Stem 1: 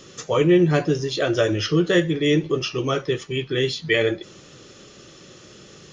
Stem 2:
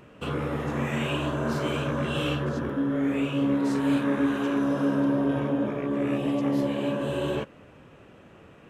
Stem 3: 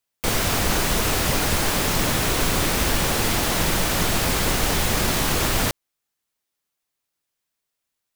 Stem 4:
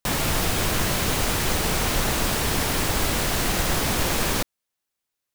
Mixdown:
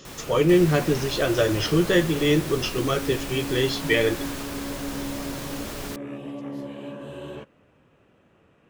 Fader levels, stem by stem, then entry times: −1.5, −9.0, −14.5, −17.0 decibels; 0.00, 0.00, 0.25, 0.00 seconds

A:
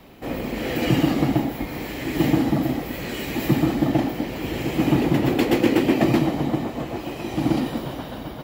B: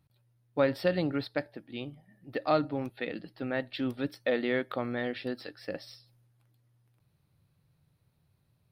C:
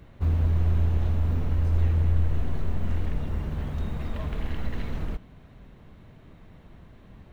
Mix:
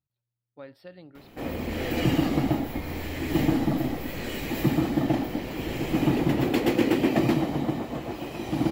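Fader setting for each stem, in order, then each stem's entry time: −4.0, −18.0, −16.0 decibels; 1.15, 0.00, 1.25 seconds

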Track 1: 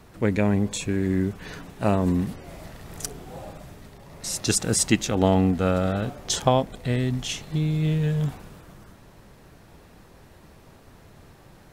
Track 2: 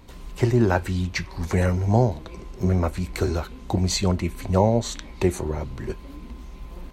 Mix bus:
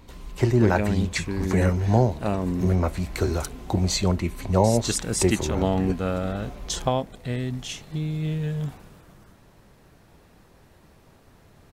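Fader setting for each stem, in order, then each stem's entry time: −4.0, −0.5 decibels; 0.40, 0.00 seconds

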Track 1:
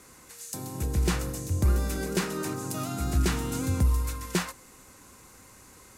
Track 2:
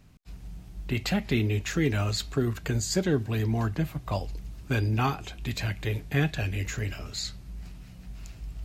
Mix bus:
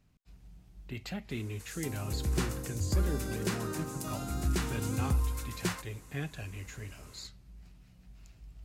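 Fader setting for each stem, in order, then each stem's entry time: −5.5, −12.0 decibels; 1.30, 0.00 seconds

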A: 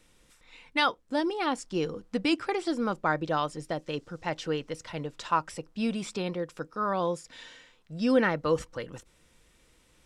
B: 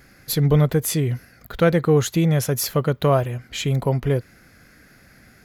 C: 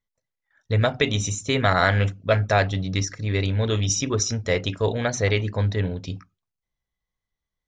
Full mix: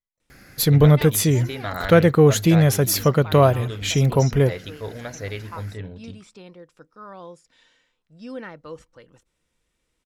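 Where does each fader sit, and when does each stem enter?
−11.5, +3.0, −10.0 decibels; 0.20, 0.30, 0.00 seconds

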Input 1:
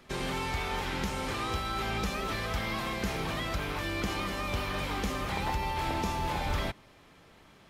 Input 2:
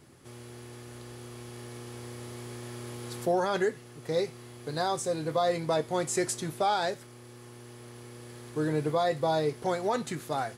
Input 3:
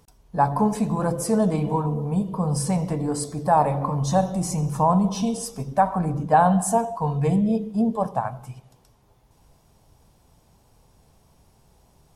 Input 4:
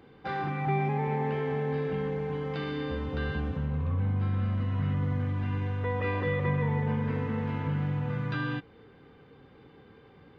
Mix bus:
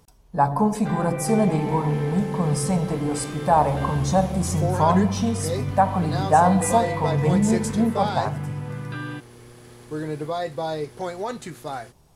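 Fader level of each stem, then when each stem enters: −11.5, −0.5, +0.5, −0.5 decibels; 1.15, 1.35, 0.00, 0.60 seconds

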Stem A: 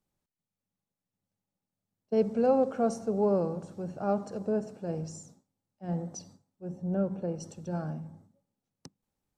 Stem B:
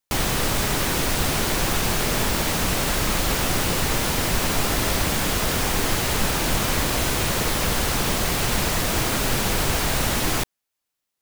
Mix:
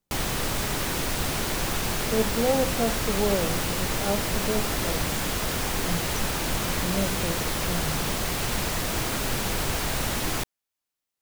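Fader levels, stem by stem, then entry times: +0.5, −5.0 decibels; 0.00, 0.00 seconds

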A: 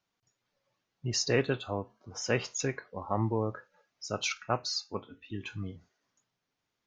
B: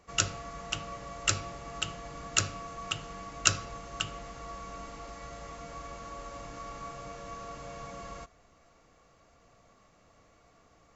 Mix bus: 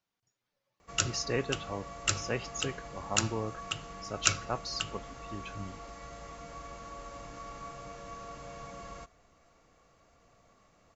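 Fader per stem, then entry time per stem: −4.5, −2.0 decibels; 0.00, 0.80 seconds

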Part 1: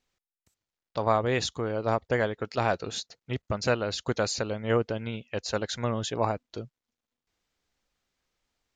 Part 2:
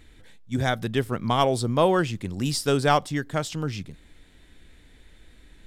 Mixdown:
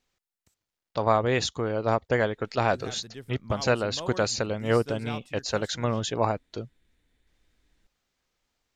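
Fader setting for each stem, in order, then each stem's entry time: +2.0, −18.0 decibels; 0.00, 2.20 seconds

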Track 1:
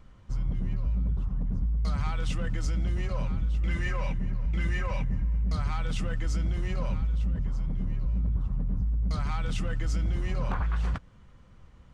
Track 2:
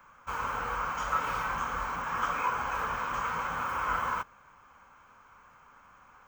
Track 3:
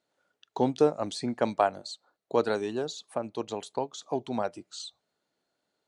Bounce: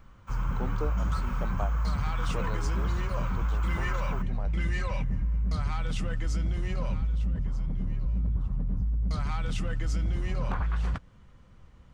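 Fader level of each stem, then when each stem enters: −0.5, −9.5, −13.0 decibels; 0.00, 0.00, 0.00 seconds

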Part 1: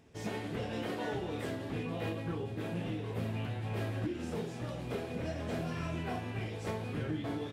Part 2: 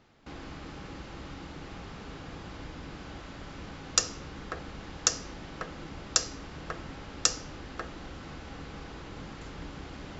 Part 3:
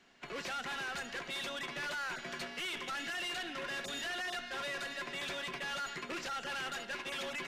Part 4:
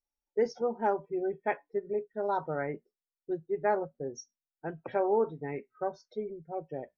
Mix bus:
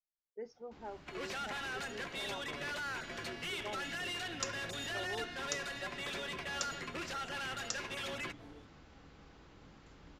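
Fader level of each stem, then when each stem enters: −17.5, −15.0, −1.5, −17.5 decibels; 1.15, 0.45, 0.85, 0.00 seconds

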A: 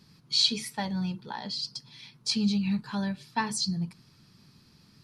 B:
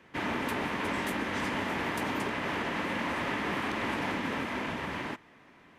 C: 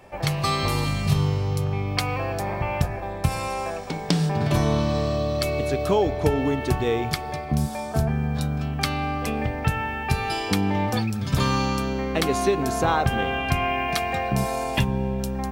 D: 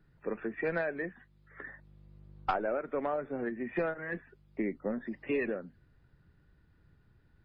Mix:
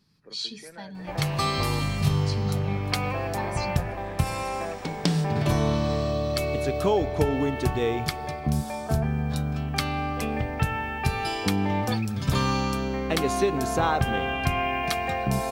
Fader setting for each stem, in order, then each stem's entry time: −9.0, −15.0, −2.0, −14.5 decibels; 0.00, 0.90, 0.95, 0.00 seconds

